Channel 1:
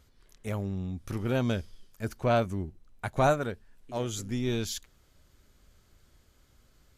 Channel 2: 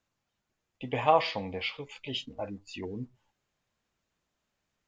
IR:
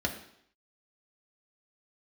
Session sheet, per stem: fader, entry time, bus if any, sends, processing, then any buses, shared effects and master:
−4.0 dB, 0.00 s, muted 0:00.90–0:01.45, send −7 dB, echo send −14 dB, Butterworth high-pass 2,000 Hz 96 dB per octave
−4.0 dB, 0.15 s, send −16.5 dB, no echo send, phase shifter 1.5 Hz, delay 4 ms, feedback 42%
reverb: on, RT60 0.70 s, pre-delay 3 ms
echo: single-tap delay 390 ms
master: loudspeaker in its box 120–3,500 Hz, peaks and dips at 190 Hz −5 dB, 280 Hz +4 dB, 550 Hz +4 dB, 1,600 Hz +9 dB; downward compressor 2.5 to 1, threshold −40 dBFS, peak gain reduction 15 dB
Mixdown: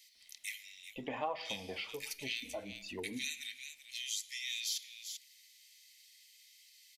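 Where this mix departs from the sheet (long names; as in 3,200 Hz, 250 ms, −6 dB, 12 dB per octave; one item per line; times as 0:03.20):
stem 1 −4.0 dB → +7.0 dB
master: missing loudspeaker in its box 120–3,500 Hz, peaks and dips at 190 Hz −5 dB, 280 Hz +4 dB, 550 Hz +4 dB, 1,600 Hz +9 dB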